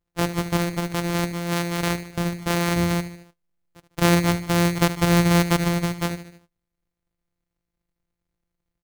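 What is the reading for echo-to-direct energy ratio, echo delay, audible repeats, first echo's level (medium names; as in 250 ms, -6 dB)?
-11.5 dB, 75 ms, 4, -13.0 dB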